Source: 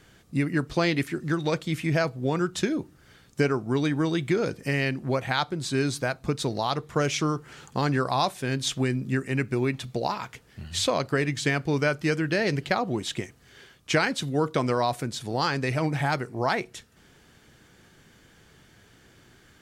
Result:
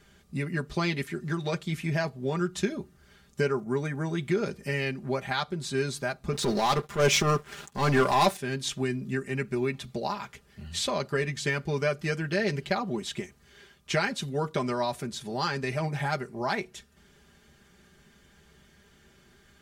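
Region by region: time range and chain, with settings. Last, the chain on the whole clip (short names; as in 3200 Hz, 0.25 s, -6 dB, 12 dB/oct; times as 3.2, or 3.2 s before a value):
3.52–4.16 band shelf 3700 Hz -10.5 dB 1.1 oct + crackle 62/s -48 dBFS + HPF 41 Hz
6.33–8.37 HPF 160 Hz 6 dB/oct + sample leveller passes 3 + transient shaper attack -11 dB, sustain -2 dB
whole clip: bell 74 Hz +11.5 dB 0.49 oct; comb 5 ms, depth 79%; gain -5.5 dB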